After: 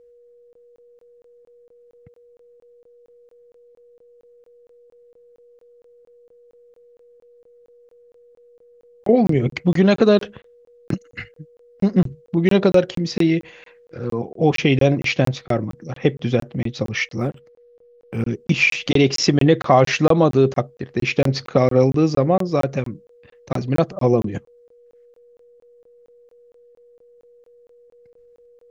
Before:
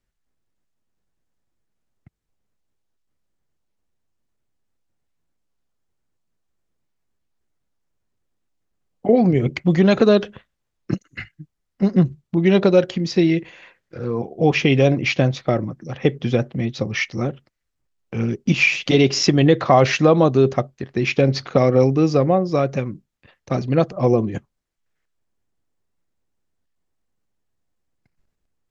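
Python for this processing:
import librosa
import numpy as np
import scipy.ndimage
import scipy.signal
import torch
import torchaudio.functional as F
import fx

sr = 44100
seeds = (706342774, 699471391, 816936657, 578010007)

y = x + 10.0 ** (-48.0 / 20.0) * np.sin(2.0 * np.pi * 480.0 * np.arange(len(x)) / sr)
y = fx.buffer_crackle(y, sr, first_s=0.53, period_s=0.23, block=1024, kind='zero')
y = fx.resample_linear(y, sr, factor=4, at=(17.18, 18.27))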